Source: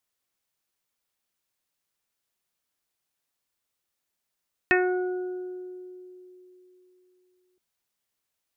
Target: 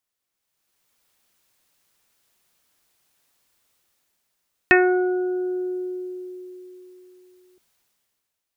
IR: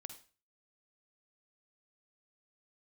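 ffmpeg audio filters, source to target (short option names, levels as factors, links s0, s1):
-af "dynaudnorm=f=110:g=13:m=5.62,volume=0.891"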